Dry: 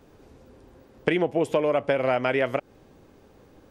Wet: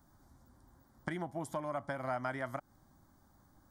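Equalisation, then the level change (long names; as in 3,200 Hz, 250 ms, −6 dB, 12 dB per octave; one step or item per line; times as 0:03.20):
first-order pre-emphasis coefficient 0.8
high-shelf EQ 2,600 Hz −10 dB
phaser with its sweep stopped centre 1,100 Hz, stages 4
+6.0 dB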